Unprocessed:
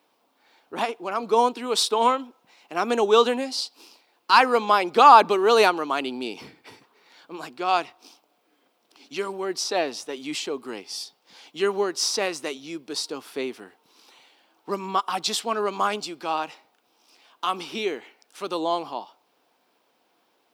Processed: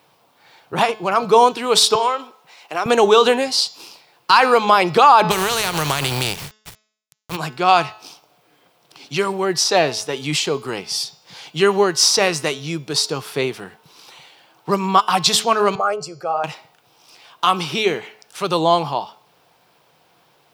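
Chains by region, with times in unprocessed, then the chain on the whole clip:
0:01.95–0:02.86: high-pass filter 370 Hz + downward compressor 2 to 1, threshold −31 dBFS
0:05.30–0:07.35: compressing power law on the bin magnitudes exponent 0.49 + downward compressor 16 to 1, threshold −24 dBFS + centre clipping without the shift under −41 dBFS
0:15.75–0:16.44: spectral envelope exaggerated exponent 1.5 + flat-topped bell 2,200 Hz −10 dB 1.1 octaves + phaser with its sweep stopped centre 1,000 Hz, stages 6
whole clip: low shelf with overshoot 190 Hz +8.5 dB, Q 3; hum removal 215.1 Hz, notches 34; boost into a limiter +11.5 dB; level −1 dB

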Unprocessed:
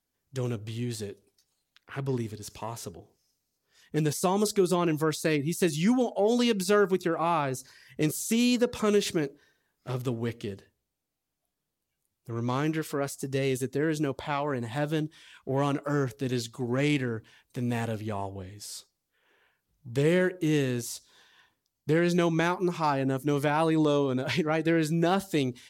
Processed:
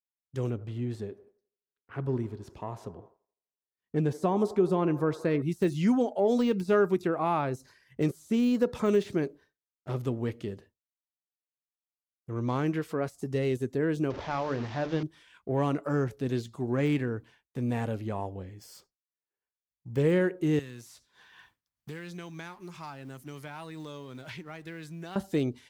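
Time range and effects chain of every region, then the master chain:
0:00.50–0:05.42: high-shelf EQ 3,300 Hz −11.5 dB + delay with a band-pass on its return 84 ms, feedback 71%, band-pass 740 Hz, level −15.5 dB
0:14.10–0:15.03: linear delta modulator 32 kbit/s, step −33 dBFS + mains-hum notches 50/100/150/200/250/300/350/400/450 Hz
0:18.44–0:20.00: notch filter 3,800 Hz, Q 5.4 + linearly interpolated sample-rate reduction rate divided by 2×
0:20.59–0:25.16: mu-law and A-law mismatch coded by mu + guitar amp tone stack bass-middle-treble 5-5-5 + multiband upward and downward compressor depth 70%
whole clip: downward expander −49 dBFS; de-essing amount 85%; high-shelf EQ 2,300 Hz −9 dB

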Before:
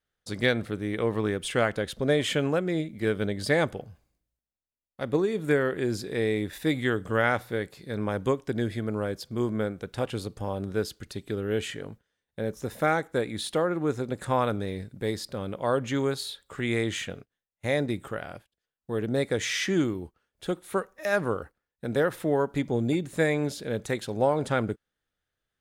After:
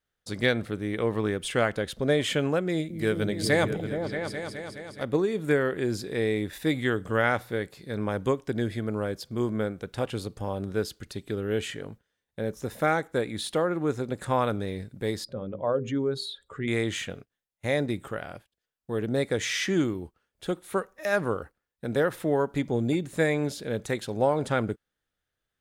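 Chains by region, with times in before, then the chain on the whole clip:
0:02.69–0:05.03: high-shelf EQ 4,300 Hz +6.5 dB + echo whose low-pass opens from repeat to repeat 210 ms, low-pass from 200 Hz, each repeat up 2 octaves, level −3 dB
0:15.24–0:16.68: expanding power law on the bin magnitudes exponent 1.6 + mains-hum notches 50/100/150/200/250/300/350/400/450/500 Hz
whole clip: no processing

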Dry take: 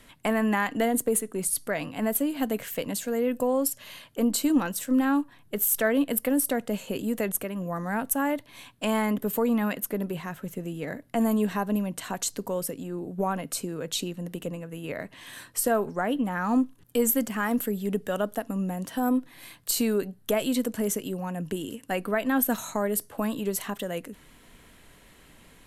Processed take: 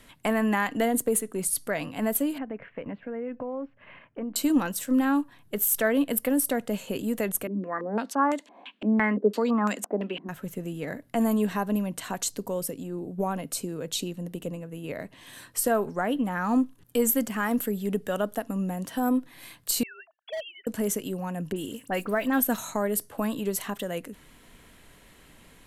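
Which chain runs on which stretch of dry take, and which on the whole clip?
0:02.38–0:04.36: Butterworth low-pass 2,400 Hz + downward compressor 3 to 1, threshold −32 dBFS + transient designer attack 0 dB, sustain −6 dB
0:07.47–0:10.29: Chebyshev high-pass filter 200 Hz, order 5 + low-pass on a step sequencer 5.9 Hz 300–7,300 Hz
0:12.28–0:15.43: parametric band 1,500 Hz −4 dB 1.5 octaves + one half of a high-frequency compander decoder only
0:19.83–0:20.67: three sine waves on the formant tracks + Chebyshev high-pass filter 650 Hz, order 5 + hard clipping −30 dBFS
0:21.52–0:22.40: one scale factor per block 7 bits + all-pass dispersion highs, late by 44 ms, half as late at 2,900 Hz
whole clip: no processing

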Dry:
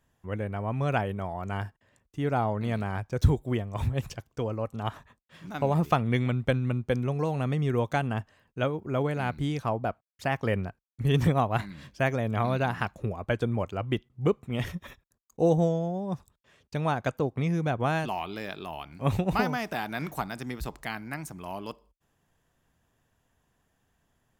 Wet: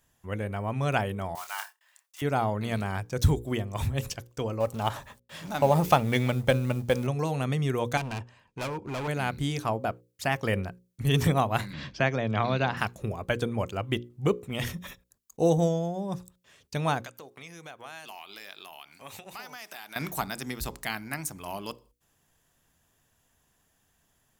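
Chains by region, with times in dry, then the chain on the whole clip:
0:01.35–0:02.22: one scale factor per block 5 bits + high-pass filter 870 Hz 24 dB per octave + double-tracking delay 28 ms −7.5 dB
0:04.60–0:07.07: mu-law and A-law mismatch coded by mu + hollow resonant body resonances 590/830 Hz, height 7 dB, ringing for 25 ms
0:07.97–0:09.08: high-frequency loss of the air 70 metres + gain into a clipping stage and back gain 31.5 dB + hollow resonant body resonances 940/2,400 Hz, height 9 dB, ringing for 20 ms
0:11.73–0:12.77: low-pass filter 5,200 Hz 24 dB per octave + multiband upward and downward compressor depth 40%
0:17.03–0:19.96: high-pass filter 1,200 Hz 6 dB per octave + downward compressor 2.5 to 1, threshold −45 dBFS
whole clip: high-shelf EQ 3,500 Hz +11 dB; mains-hum notches 60/120/180/240/300/360/420/480/540 Hz

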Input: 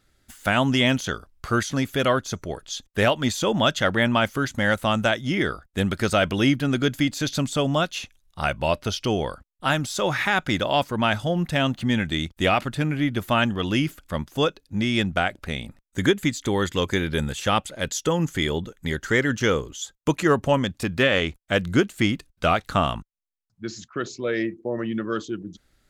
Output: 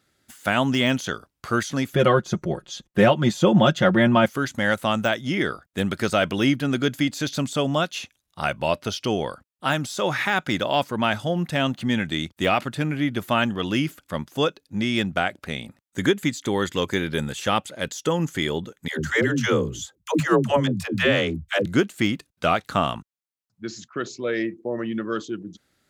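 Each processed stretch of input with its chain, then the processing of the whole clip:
0:01.93–0:04.26: spectral tilt −2.5 dB per octave + comb filter 5.6 ms, depth 76%
0:18.88–0:21.66: low-shelf EQ 110 Hz +8.5 dB + all-pass dispersion lows, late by 125 ms, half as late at 350 Hz
whole clip: de-essing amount 60%; high-pass filter 120 Hz 12 dB per octave

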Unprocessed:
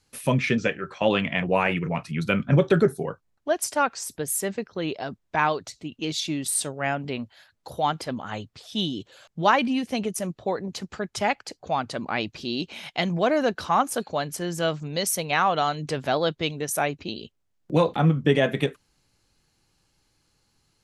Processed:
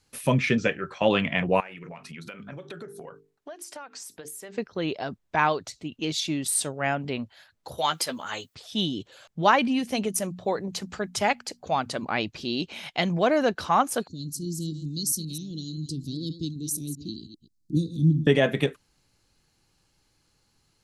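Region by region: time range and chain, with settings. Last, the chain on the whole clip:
0:01.60–0:04.57: low-shelf EQ 240 Hz −11 dB + mains-hum notches 50/100/150/200/250/300/350/400/450 Hz + downward compressor 8 to 1, threshold −37 dBFS
0:07.78–0:08.55: RIAA equalisation recording + notch filter 740 Hz, Q 13 + double-tracking delay 12 ms −7.5 dB
0:09.79–0:12.06: high-shelf EQ 6,400 Hz +6.5 dB + mains-hum notches 60/120/180/240 Hz
0:14.07–0:18.27: delay that plays each chunk backwards 131 ms, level −11.5 dB + Chebyshev band-stop filter 320–4,200 Hz, order 4
whole clip: no processing

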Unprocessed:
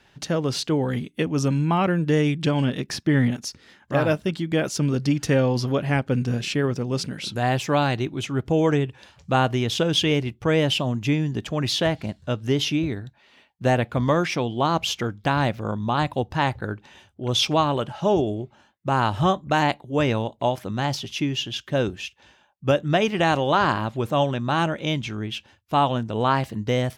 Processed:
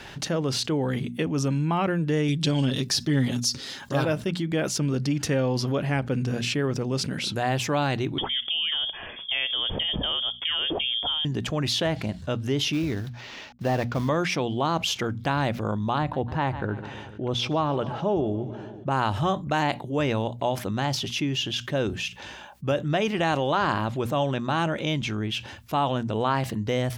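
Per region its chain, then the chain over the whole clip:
0:02.28–0:04.05: high shelf with overshoot 3,000 Hz +7.5 dB, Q 1.5 + comb filter 7.4 ms, depth 55%
0:08.18–0:11.25: downward compressor, threshold −23 dBFS + voice inversion scrambler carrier 3,400 Hz
0:12.73–0:14.09: variable-slope delta modulation 32 kbit/s + floating-point word with a short mantissa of 4 bits
0:15.98–0:18.91: low-pass filter 1,600 Hz 6 dB per octave + repeating echo 148 ms, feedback 49%, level −20 dB
whole clip: mains-hum notches 60/120/180/240 Hz; envelope flattener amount 50%; level −6.5 dB

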